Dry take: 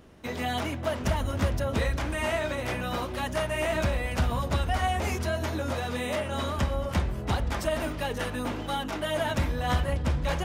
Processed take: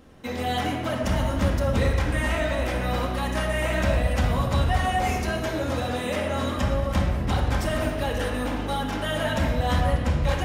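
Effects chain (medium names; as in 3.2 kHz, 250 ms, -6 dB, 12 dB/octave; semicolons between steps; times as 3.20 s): simulated room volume 2300 m³, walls mixed, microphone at 2.1 m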